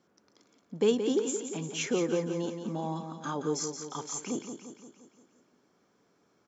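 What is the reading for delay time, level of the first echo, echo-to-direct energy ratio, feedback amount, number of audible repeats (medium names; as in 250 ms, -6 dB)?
174 ms, -8.0 dB, -6.5 dB, 55%, 6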